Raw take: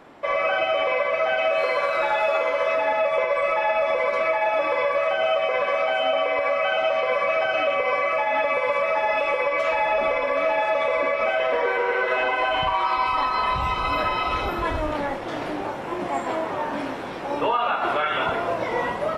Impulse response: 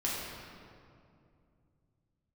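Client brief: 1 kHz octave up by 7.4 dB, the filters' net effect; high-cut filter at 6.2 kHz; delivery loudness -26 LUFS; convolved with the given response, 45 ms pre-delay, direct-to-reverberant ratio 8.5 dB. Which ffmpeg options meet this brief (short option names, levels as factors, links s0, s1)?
-filter_complex "[0:a]lowpass=6200,equalizer=f=1000:t=o:g=9,asplit=2[s0][s1];[1:a]atrim=start_sample=2205,adelay=45[s2];[s1][s2]afir=irnorm=-1:irlink=0,volume=0.178[s3];[s0][s3]amix=inputs=2:normalize=0,volume=0.376"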